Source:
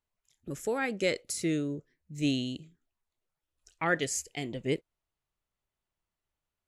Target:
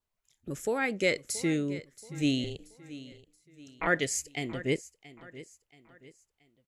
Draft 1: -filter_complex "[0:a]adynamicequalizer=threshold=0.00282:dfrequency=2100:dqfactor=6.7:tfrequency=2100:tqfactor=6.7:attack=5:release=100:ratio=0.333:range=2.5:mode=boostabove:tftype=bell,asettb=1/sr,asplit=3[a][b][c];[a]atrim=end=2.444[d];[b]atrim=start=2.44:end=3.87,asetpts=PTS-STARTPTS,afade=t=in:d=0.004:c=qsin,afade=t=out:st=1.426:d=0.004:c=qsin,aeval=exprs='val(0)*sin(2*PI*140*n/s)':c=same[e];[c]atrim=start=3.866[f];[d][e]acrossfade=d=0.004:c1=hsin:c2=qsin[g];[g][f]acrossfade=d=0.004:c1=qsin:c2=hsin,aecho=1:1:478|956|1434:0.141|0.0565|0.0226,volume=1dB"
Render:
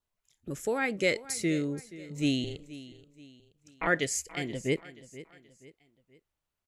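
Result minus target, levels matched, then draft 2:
echo 0.2 s early
-filter_complex "[0:a]adynamicequalizer=threshold=0.00282:dfrequency=2100:dqfactor=6.7:tfrequency=2100:tqfactor=6.7:attack=5:release=100:ratio=0.333:range=2.5:mode=boostabove:tftype=bell,asettb=1/sr,asplit=3[a][b][c];[a]atrim=end=2.444[d];[b]atrim=start=2.44:end=3.87,asetpts=PTS-STARTPTS,afade=t=in:d=0.004:c=qsin,afade=t=out:st=1.426:d=0.004:c=qsin,aeval=exprs='val(0)*sin(2*PI*140*n/s)':c=same[e];[c]atrim=start=3.866[f];[d][e]acrossfade=d=0.004:c1=hsin:c2=qsin[g];[g][f]acrossfade=d=0.004:c1=qsin:c2=hsin,aecho=1:1:678|1356|2034:0.141|0.0565|0.0226,volume=1dB"

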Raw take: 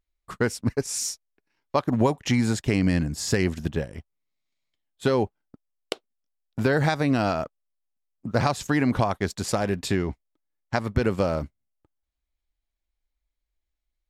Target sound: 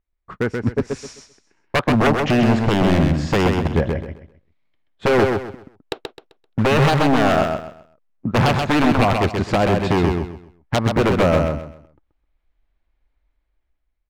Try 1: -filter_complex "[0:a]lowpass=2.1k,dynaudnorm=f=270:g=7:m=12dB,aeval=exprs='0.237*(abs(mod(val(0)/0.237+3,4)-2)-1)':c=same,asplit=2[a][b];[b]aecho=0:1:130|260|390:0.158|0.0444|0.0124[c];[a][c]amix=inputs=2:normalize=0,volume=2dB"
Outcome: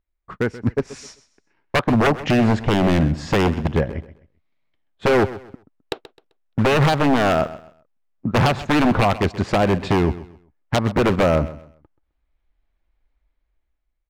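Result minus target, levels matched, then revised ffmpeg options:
echo-to-direct -11.5 dB
-filter_complex "[0:a]lowpass=2.1k,dynaudnorm=f=270:g=7:m=12dB,aeval=exprs='0.237*(abs(mod(val(0)/0.237+3,4)-2)-1)':c=same,asplit=2[a][b];[b]aecho=0:1:130|260|390|520:0.596|0.167|0.0467|0.0131[c];[a][c]amix=inputs=2:normalize=0,volume=2dB"

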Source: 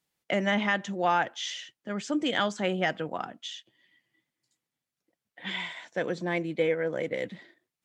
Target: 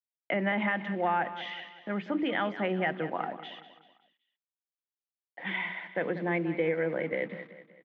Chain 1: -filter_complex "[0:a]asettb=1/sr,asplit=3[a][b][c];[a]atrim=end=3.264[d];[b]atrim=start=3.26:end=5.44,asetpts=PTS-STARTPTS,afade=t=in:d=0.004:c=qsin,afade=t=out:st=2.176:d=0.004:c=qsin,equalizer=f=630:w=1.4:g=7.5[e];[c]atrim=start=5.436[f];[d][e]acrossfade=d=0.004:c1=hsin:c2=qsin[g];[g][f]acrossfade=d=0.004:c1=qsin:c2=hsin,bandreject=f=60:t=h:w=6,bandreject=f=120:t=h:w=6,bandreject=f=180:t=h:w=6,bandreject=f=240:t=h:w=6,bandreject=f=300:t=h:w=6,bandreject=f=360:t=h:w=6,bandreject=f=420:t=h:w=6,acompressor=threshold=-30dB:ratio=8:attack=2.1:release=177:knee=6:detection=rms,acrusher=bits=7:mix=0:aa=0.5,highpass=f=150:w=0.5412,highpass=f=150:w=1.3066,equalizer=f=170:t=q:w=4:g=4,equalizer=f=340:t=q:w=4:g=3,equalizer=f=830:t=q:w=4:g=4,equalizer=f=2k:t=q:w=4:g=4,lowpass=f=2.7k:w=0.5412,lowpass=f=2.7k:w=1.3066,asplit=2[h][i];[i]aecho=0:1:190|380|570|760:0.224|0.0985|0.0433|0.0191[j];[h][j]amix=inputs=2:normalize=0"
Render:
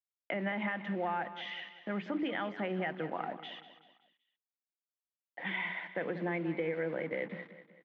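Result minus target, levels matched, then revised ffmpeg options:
compressor: peak gain reduction +7 dB
-filter_complex "[0:a]asettb=1/sr,asplit=3[a][b][c];[a]atrim=end=3.264[d];[b]atrim=start=3.26:end=5.44,asetpts=PTS-STARTPTS,afade=t=in:d=0.004:c=qsin,afade=t=out:st=2.176:d=0.004:c=qsin,equalizer=f=630:w=1.4:g=7.5[e];[c]atrim=start=5.436[f];[d][e]acrossfade=d=0.004:c1=hsin:c2=qsin[g];[g][f]acrossfade=d=0.004:c1=qsin:c2=hsin,bandreject=f=60:t=h:w=6,bandreject=f=120:t=h:w=6,bandreject=f=180:t=h:w=6,bandreject=f=240:t=h:w=6,bandreject=f=300:t=h:w=6,bandreject=f=360:t=h:w=6,bandreject=f=420:t=h:w=6,acompressor=threshold=-22dB:ratio=8:attack=2.1:release=177:knee=6:detection=rms,acrusher=bits=7:mix=0:aa=0.5,highpass=f=150:w=0.5412,highpass=f=150:w=1.3066,equalizer=f=170:t=q:w=4:g=4,equalizer=f=340:t=q:w=4:g=3,equalizer=f=830:t=q:w=4:g=4,equalizer=f=2k:t=q:w=4:g=4,lowpass=f=2.7k:w=0.5412,lowpass=f=2.7k:w=1.3066,asplit=2[h][i];[i]aecho=0:1:190|380|570|760:0.224|0.0985|0.0433|0.0191[j];[h][j]amix=inputs=2:normalize=0"

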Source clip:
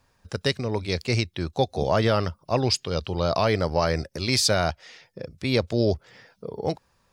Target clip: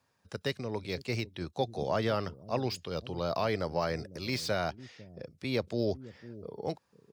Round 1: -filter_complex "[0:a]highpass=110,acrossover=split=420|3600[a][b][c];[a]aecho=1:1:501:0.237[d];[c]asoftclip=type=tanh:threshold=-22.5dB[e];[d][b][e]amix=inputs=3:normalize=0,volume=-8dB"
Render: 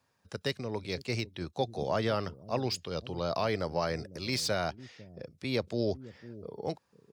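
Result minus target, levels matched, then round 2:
soft clip: distortion -7 dB
-filter_complex "[0:a]highpass=110,acrossover=split=420|3600[a][b][c];[a]aecho=1:1:501:0.237[d];[c]asoftclip=type=tanh:threshold=-32.5dB[e];[d][b][e]amix=inputs=3:normalize=0,volume=-8dB"

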